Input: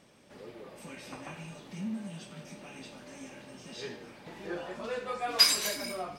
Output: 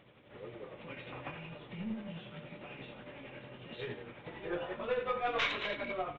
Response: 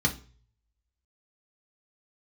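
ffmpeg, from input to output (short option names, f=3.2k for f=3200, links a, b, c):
-filter_complex "[0:a]aresample=8000,aresample=44100,aeval=exprs='0.141*(cos(1*acos(clip(val(0)/0.141,-1,1)))-cos(1*PI/2))+0.0355*(cos(2*acos(clip(val(0)/0.141,-1,1)))-cos(2*PI/2))':c=same,asplit=2[a][b];[1:a]atrim=start_sample=2205,lowpass=2.2k[c];[b][c]afir=irnorm=-1:irlink=0,volume=-21.5dB[d];[a][d]amix=inputs=2:normalize=0,tremolo=f=11:d=0.42,volume=2dB"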